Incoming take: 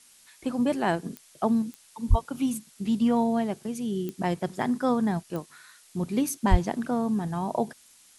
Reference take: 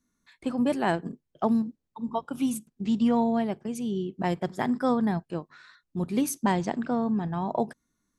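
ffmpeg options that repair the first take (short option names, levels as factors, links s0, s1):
-filter_complex "[0:a]adeclick=t=4,asplit=3[s0][s1][s2];[s0]afade=t=out:st=2.09:d=0.02[s3];[s1]highpass=f=140:w=0.5412,highpass=f=140:w=1.3066,afade=t=in:st=2.09:d=0.02,afade=t=out:st=2.21:d=0.02[s4];[s2]afade=t=in:st=2.21:d=0.02[s5];[s3][s4][s5]amix=inputs=3:normalize=0,asplit=3[s6][s7][s8];[s6]afade=t=out:st=6.5:d=0.02[s9];[s7]highpass=f=140:w=0.5412,highpass=f=140:w=1.3066,afade=t=in:st=6.5:d=0.02,afade=t=out:st=6.62:d=0.02[s10];[s8]afade=t=in:st=6.62:d=0.02[s11];[s9][s10][s11]amix=inputs=3:normalize=0,afftdn=nr=21:nf=-56"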